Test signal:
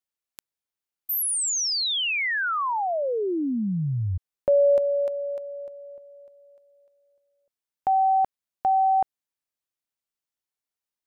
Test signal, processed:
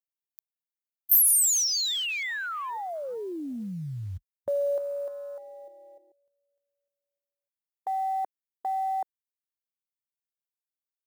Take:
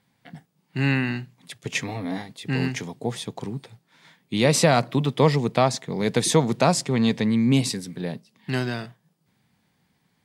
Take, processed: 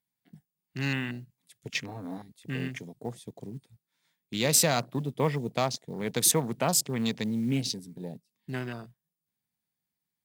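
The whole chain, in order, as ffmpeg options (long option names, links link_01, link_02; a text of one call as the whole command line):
ffmpeg -i in.wav -af "afwtdn=0.0224,aemphasis=mode=production:type=75fm,acrusher=bits=8:mode=log:mix=0:aa=0.000001,volume=-8dB" out.wav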